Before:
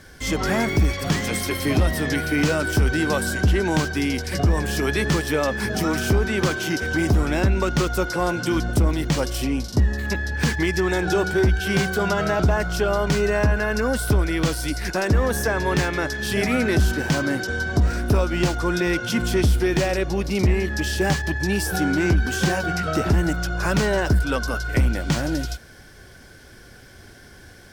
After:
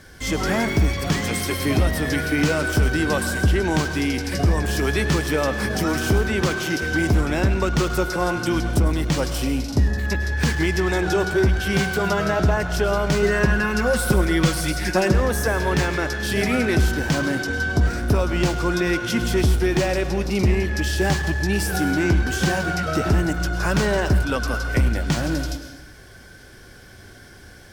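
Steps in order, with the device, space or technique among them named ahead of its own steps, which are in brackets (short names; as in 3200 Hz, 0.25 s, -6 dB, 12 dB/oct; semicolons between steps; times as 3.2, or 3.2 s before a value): 13.22–15.14 comb 5.5 ms, depth 90%; saturated reverb return (on a send at -5.5 dB: reverb RT60 0.85 s, pre-delay 97 ms + soft clip -23 dBFS, distortion -9 dB)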